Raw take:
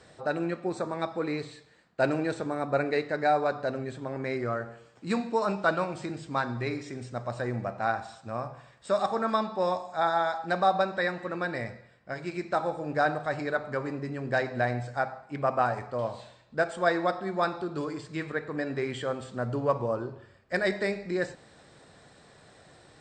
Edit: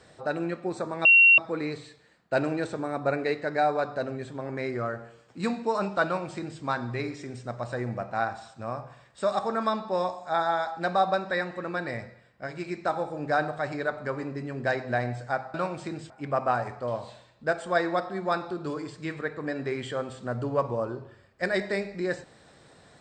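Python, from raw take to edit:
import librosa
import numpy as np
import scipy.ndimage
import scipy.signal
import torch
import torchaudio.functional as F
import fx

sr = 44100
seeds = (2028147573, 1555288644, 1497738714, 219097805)

y = fx.edit(x, sr, fx.insert_tone(at_s=1.05, length_s=0.33, hz=2740.0, db=-12.5),
    fx.duplicate(start_s=5.72, length_s=0.56, to_s=15.21), tone=tone)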